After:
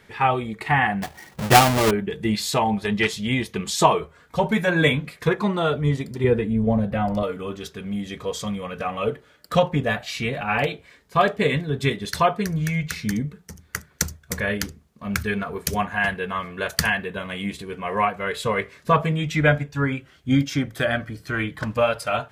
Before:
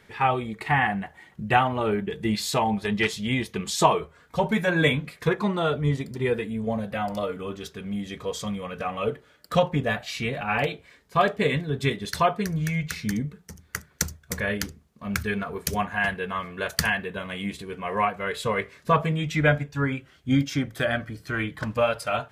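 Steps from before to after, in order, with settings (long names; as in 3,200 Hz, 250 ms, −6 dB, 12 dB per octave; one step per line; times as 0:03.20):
0:01.02–0:01.91: each half-wave held at its own peak
0:06.24–0:07.23: spectral tilt −2.5 dB per octave
level +2.5 dB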